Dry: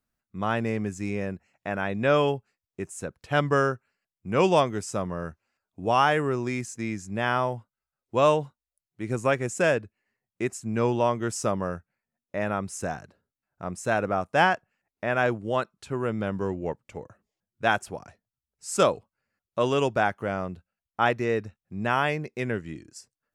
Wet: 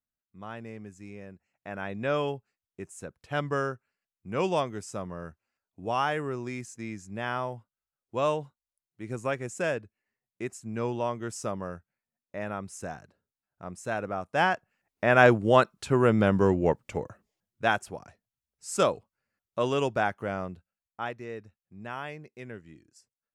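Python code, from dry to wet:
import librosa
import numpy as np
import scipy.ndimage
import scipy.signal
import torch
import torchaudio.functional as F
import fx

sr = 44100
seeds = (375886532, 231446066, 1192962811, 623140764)

y = fx.gain(x, sr, db=fx.line((1.33, -14.0), (1.83, -6.5), (14.2, -6.5), (15.26, 6.5), (16.97, 6.5), (17.79, -3.0), (20.44, -3.0), (21.16, -13.0)))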